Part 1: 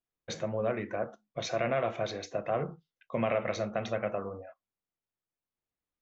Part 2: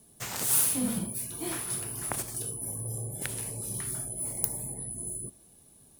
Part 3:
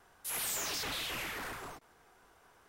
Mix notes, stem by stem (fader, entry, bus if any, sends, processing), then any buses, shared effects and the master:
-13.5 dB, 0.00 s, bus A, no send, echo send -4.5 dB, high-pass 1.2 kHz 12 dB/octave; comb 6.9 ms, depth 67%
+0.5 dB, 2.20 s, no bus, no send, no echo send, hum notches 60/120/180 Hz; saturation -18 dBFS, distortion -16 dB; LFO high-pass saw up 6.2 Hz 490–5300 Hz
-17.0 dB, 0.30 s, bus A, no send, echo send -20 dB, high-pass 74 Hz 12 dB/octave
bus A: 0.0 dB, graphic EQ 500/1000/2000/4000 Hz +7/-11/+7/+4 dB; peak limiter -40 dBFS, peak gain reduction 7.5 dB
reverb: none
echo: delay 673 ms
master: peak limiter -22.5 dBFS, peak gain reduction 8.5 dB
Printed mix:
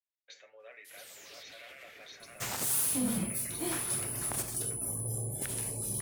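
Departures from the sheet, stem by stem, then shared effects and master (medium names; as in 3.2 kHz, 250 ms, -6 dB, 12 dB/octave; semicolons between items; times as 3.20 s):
stem 2: missing LFO high-pass saw up 6.2 Hz 490–5300 Hz; stem 3: entry 0.30 s -> 0.60 s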